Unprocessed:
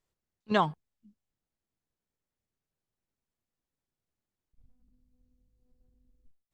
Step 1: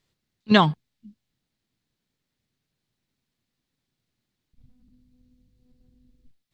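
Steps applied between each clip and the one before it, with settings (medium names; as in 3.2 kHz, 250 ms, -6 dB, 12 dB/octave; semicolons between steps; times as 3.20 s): graphic EQ 125/250/2000/4000 Hz +8/+7/+5/+10 dB; trim +4.5 dB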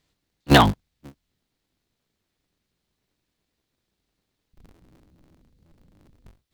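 cycle switcher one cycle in 3, inverted; trim +2.5 dB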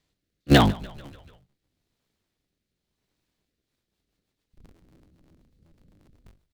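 rotary cabinet horn 0.85 Hz, later 8 Hz, at 3.36 s; frequency-shifting echo 146 ms, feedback 62%, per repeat -46 Hz, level -21.5 dB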